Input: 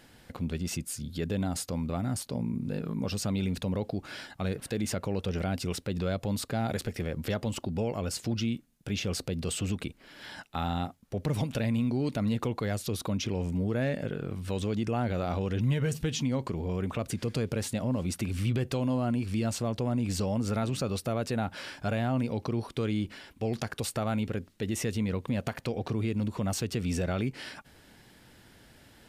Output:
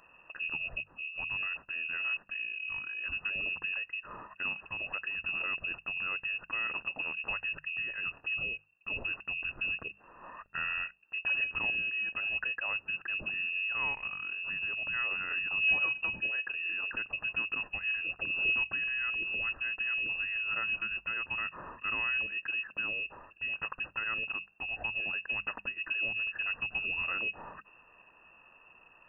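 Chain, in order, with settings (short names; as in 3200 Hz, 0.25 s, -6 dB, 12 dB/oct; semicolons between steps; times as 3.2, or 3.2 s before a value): Chebyshev band-stop 150–960 Hz, order 3; inverted band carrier 2700 Hz; notches 50/100/150/200 Hz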